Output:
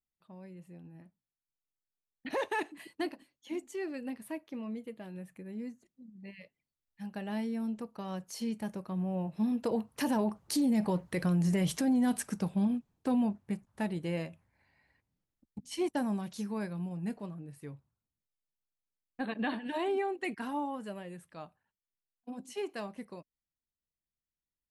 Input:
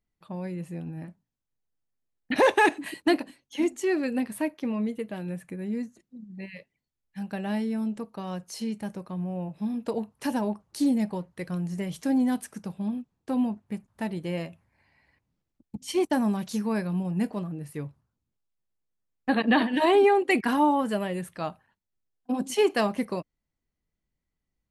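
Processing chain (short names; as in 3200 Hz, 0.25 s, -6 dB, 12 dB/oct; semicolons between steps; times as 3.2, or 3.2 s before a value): Doppler pass-by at 11.29, 8 m/s, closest 6.7 m; limiter -30 dBFS, peak gain reduction 12 dB; gain +7.5 dB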